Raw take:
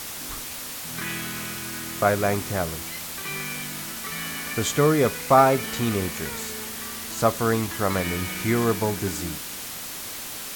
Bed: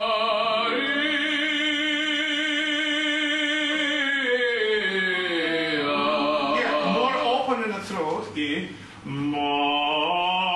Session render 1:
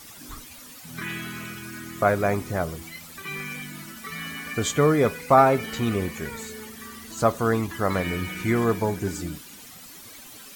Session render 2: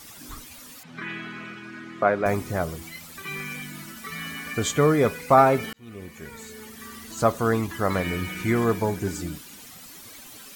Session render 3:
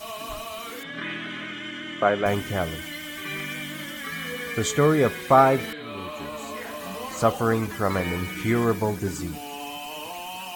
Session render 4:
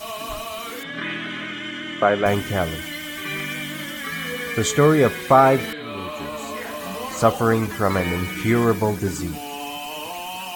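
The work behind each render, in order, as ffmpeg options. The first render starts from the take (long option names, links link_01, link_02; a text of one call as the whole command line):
ffmpeg -i in.wav -af "afftdn=noise_reduction=13:noise_floor=-35" out.wav
ffmpeg -i in.wav -filter_complex "[0:a]asettb=1/sr,asplit=3[link_01][link_02][link_03];[link_01]atrim=end=0.834[link_04];[link_02]atrim=start=0.83:end=2.26,asetpts=PTS-STARTPTS,afade=type=in:duration=0.004:curve=qsin,afade=type=out:start_time=1.426:duration=0.004:curve=qsin,highpass=190,lowpass=3000[link_05];[link_03]atrim=start=2.256[link_06];[link_04][link_05]acrossfade=duration=0.004:curve1=hsin:curve2=qsin[link_07];[link_07][link_06]acrossfade=duration=0.004:curve1=qsin:curve2=hsin,asplit=2[link_08][link_09];[link_08]atrim=end=5.73,asetpts=PTS-STARTPTS,afade=type=out:start_time=5.726:duration=0.004:curve=hsin[link_10];[link_09]atrim=start=5.73,asetpts=PTS-STARTPTS,afade=type=in:duration=1.22[link_11];[link_10][link_11]concat=n=2:v=0:a=1" out.wav
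ffmpeg -i in.wav -i bed.wav -filter_complex "[1:a]volume=-13dB[link_01];[0:a][link_01]amix=inputs=2:normalize=0" out.wav
ffmpeg -i in.wav -af "volume=4dB,alimiter=limit=-3dB:level=0:latency=1" out.wav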